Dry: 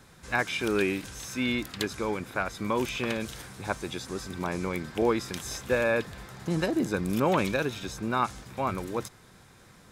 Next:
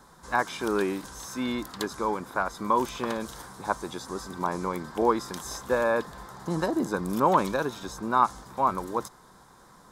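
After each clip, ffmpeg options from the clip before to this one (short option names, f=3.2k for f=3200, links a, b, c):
-af "equalizer=f=100:t=o:w=0.67:g=-11,equalizer=f=1k:t=o:w=0.67:g=10,equalizer=f=2.5k:t=o:w=0.67:g=-12"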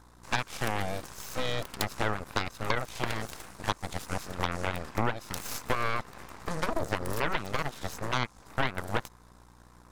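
-af "aeval=exprs='val(0)+0.00316*(sin(2*PI*60*n/s)+sin(2*PI*2*60*n/s)/2+sin(2*PI*3*60*n/s)/3+sin(2*PI*4*60*n/s)/4+sin(2*PI*5*60*n/s)/5)':c=same,acompressor=threshold=-28dB:ratio=20,aeval=exprs='0.168*(cos(1*acos(clip(val(0)/0.168,-1,1)))-cos(1*PI/2))+0.0075*(cos(5*acos(clip(val(0)/0.168,-1,1)))-cos(5*PI/2))+0.0376*(cos(7*acos(clip(val(0)/0.168,-1,1)))-cos(7*PI/2))+0.0376*(cos(8*acos(clip(val(0)/0.168,-1,1)))-cos(8*PI/2))':c=same,volume=2dB"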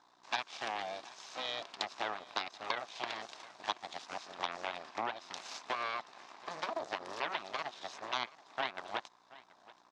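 -af "highpass=480,equalizer=f=490:t=q:w=4:g=-8,equalizer=f=710:t=q:w=4:g=3,equalizer=f=1.4k:t=q:w=4:g=-5,equalizer=f=2k:t=q:w=4:g=-3,equalizer=f=3.7k:t=q:w=4:g=3,lowpass=f=5.8k:w=0.5412,lowpass=f=5.8k:w=1.3066,aecho=1:1:729:0.1,volume=-4dB"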